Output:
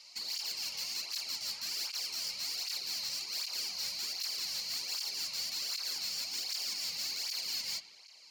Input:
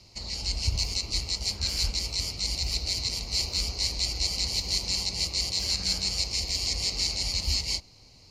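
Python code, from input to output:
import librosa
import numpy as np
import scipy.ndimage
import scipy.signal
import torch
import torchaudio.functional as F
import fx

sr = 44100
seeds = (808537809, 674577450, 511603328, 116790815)

p1 = scipy.signal.sosfilt(scipy.signal.butter(2, 1200.0, 'highpass', fs=sr, output='sos'), x)
p2 = fx.rider(p1, sr, range_db=4, speed_s=0.5)
p3 = p1 + (p2 * librosa.db_to_amplitude(2.0))
p4 = fx.tube_stage(p3, sr, drive_db=27.0, bias=0.25)
p5 = np.clip(p4, -10.0 ** (-28.0 / 20.0), 10.0 ** (-28.0 / 20.0))
p6 = p5 + fx.echo_bbd(p5, sr, ms=80, stages=2048, feedback_pct=79, wet_db=-17.5, dry=0)
p7 = fx.flanger_cancel(p6, sr, hz=1.3, depth_ms=3.1)
y = p7 * librosa.db_to_amplitude(-3.5)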